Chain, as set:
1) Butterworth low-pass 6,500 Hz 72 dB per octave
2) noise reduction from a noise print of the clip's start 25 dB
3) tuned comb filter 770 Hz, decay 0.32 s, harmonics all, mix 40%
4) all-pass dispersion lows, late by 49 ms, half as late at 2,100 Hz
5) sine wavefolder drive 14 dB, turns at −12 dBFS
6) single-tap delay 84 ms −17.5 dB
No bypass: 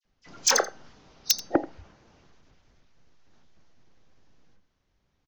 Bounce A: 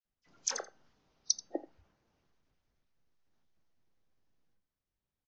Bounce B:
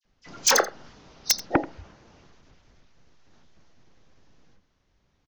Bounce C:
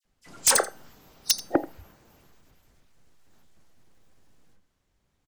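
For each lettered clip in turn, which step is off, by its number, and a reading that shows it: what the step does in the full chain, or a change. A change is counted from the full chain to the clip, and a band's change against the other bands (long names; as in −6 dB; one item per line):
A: 5, change in crest factor +9.5 dB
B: 3, 125 Hz band +5.5 dB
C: 1, 8 kHz band +2.0 dB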